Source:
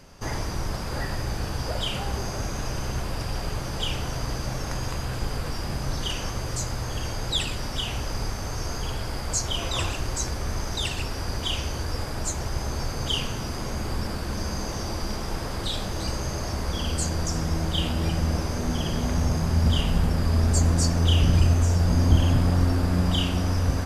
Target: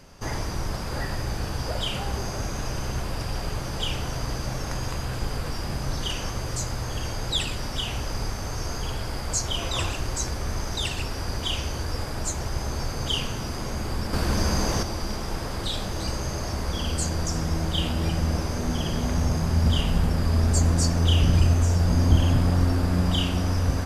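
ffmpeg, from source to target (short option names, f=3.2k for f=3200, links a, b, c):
-filter_complex "[0:a]asettb=1/sr,asplit=3[a][b][c];[a]atrim=end=14.134[d];[b]atrim=start=14.13:end=14.83,asetpts=PTS-STARTPTS,afade=t=in:d=0.004:c=qsin,afade=t=out:st=0.696:d=0.004:c=qsin,acontrast=53[e];[c]atrim=start=14.826[f];[d][e]acrossfade=d=0.004:c1=hsin:c2=qsin[g];[g][f]acrossfade=d=0.004:c1=qsin:c2=hsin"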